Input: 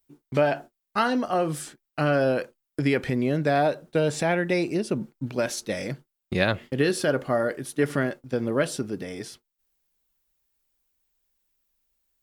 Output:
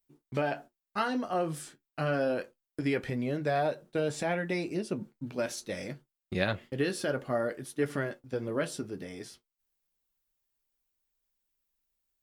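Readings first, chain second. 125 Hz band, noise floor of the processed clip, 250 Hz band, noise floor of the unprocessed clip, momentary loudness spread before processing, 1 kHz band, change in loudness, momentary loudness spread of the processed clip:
-7.5 dB, under -85 dBFS, -7.0 dB, -82 dBFS, 11 LU, -6.5 dB, -7.0 dB, 11 LU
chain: flange 0.27 Hz, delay 8.5 ms, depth 3.7 ms, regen -49%; gain -3 dB

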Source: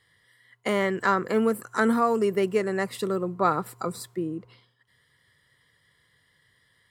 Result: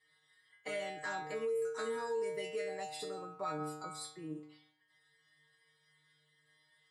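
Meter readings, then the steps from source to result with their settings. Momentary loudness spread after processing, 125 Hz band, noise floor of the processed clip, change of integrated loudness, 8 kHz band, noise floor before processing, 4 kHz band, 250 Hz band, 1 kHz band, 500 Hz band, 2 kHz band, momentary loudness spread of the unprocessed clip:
10 LU, -17.0 dB, -74 dBFS, -14.0 dB, -7.5 dB, -67 dBFS, -7.5 dB, -20.5 dB, -15.5 dB, -12.0 dB, -13.5 dB, 11 LU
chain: metallic resonator 150 Hz, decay 0.71 s, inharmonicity 0.002; dynamic EQ 990 Hz, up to -8 dB, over -53 dBFS, Q 0.83; limiter -37.5 dBFS, peak gain reduction 10.5 dB; LPF 10000 Hz 24 dB/oct; low shelf 190 Hz -12 dB; gain +9.5 dB

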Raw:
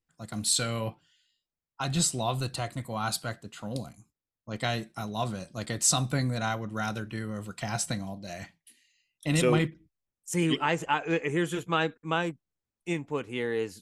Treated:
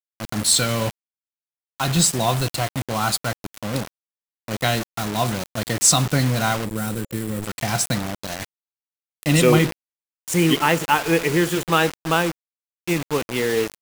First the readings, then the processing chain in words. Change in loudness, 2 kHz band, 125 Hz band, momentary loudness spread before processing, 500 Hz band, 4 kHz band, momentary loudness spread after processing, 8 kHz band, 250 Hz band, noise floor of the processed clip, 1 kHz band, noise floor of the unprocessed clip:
+9.0 dB, +9.0 dB, +8.5 dB, 13 LU, +8.5 dB, +9.5 dB, 12 LU, +9.0 dB, +8.5 dB, under -85 dBFS, +8.5 dB, under -85 dBFS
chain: spring tank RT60 1.3 s, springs 48 ms, chirp 25 ms, DRR 17.5 dB; bit-crush 6-bit; spectral gain 6.65–7.42, 540–7100 Hz -9 dB; gain +8.5 dB

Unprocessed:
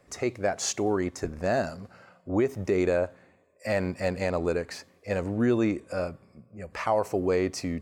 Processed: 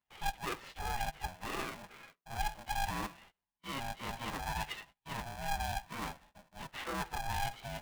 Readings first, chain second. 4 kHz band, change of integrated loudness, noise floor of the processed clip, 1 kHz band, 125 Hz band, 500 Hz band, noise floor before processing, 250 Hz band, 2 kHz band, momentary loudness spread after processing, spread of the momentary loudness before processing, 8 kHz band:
-2.0 dB, -11.5 dB, under -85 dBFS, -2.5 dB, -10.5 dB, -21.5 dB, -62 dBFS, -18.5 dB, -5.0 dB, 12 LU, 11 LU, -10.0 dB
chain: inharmonic rescaling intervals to 115%; gate -56 dBFS, range -26 dB; reverse; compressor 6:1, threshold -37 dBFS, peak gain reduction 16 dB; reverse; speaker cabinet 360–3500 Hz, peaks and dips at 380 Hz +6 dB, 670 Hz -6 dB, 2500 Hz +4 dB; polarity switched at an audio rate 410 Hz; gain +3.5 dB

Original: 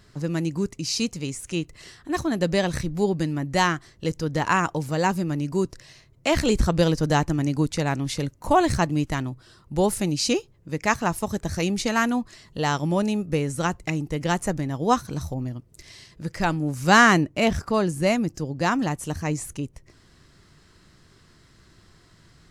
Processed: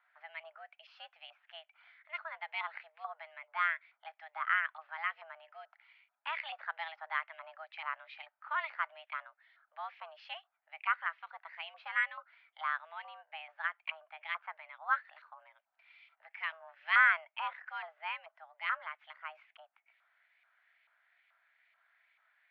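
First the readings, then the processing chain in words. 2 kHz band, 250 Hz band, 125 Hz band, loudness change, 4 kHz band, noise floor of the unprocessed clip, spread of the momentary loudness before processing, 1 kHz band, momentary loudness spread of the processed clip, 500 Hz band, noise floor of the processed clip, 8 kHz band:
-6.5 dB, under -40 dB, under -40 dB, -12.5 dB, -16.5 dB, -56 dBFS, 10 LU, -12.5 dB, 19 LU, -29.0 dB, -83 dBFS, under -40 dB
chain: LFO band-pass saw up 2.3 Hz 980–2100 Hz; mistuned SSB +320 Hz 320–3300 Hz; gain -5 dB

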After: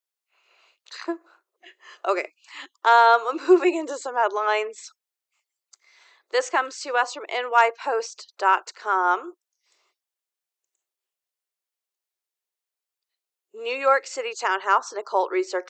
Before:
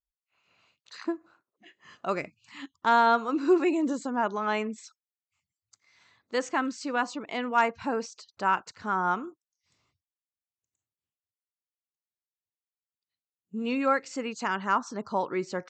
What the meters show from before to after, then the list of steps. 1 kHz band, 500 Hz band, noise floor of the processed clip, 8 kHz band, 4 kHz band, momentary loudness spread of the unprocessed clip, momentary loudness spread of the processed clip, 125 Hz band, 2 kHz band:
+6.0 dB, +6.5 dB, under -85 dBFS, +7.0 dB, +6.5 dB, 14 LU, 16 LU, under -25 dB, +6.0 dB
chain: Chebyshev high-pass 360 Hz, order 5; gain +7 dB

